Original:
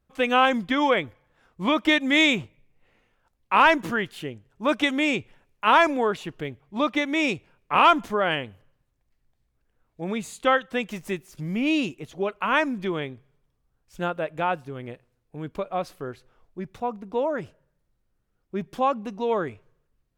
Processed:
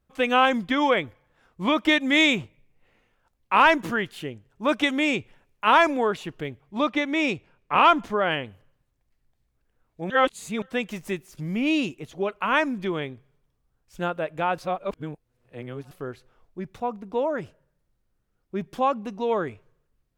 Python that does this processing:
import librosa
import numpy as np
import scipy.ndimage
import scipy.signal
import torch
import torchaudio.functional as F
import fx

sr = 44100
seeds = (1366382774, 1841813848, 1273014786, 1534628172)

y = fx.high_shelf(x, sr, hz=8200.0, db=-10.0, at=(6.87, 8.45))
y = fx.edit(y, sr, fx.reverse_span(start_s=10.1, length_s=0.52),
    fx.reverse_span(start_s=14.58, length_s=1.33), tone=tone)